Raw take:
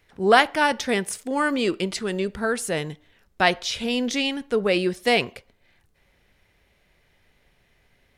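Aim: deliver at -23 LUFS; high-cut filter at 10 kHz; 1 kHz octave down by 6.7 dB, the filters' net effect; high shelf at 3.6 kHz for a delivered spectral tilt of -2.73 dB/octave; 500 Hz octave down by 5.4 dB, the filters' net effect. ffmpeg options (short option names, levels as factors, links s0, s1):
-af "lowpass=10000,equalizer=f=500:t=o:g=-5,equalizer=f=1000:t=o:g=-8,highshelf=f=3600:g=5.5,volume=1.19"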